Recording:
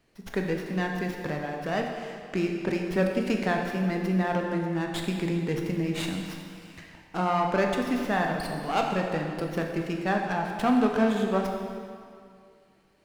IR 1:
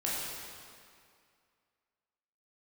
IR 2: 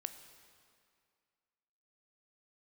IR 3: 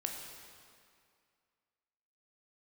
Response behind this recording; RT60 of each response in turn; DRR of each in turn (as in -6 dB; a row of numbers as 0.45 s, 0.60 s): 3; 2.2 s, 2.2 s, 2.2 s; -7.0 dB, 8.5 dB, 1.0 dB